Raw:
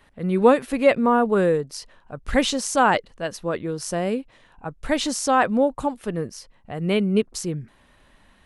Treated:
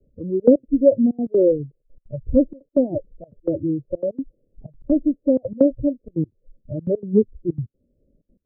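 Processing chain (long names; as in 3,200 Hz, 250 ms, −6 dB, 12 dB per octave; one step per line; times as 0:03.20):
spectral magnitudes quantised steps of 15 dB
noise reduction from a noise print of the clip's start 19 dB
Butterworth low-pass 560 Hz 72 dB per octave
gate pattern "xxxxx.x.x" 190 BPM −24 dB
multiband upward and downward compressor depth 40%
level +8 dB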